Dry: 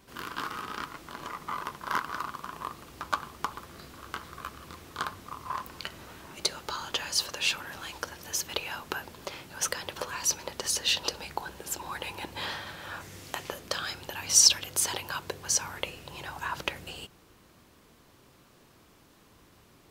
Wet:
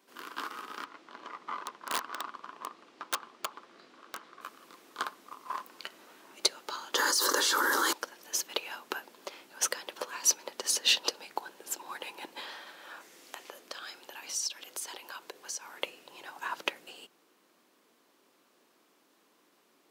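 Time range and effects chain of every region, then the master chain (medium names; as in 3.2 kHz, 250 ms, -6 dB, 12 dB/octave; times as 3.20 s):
0.84–4.41 s: low-pass 4.8 kHz + integer overflow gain 21.5 dB
6.95–7.93 s: static phaser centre 690 Hz, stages 6 + hard clipper -22 dBFS + level flattener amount 100%
12.40–15.78 s: high-pass 200 Hz 6 dB/octave + compression 2.5:1, threshold -35 dBFS
whole clip: high-pass 250 Hz 24 dB/octave; upward expansion 1.5:1, over -42 dBFS; trim +2.5 dB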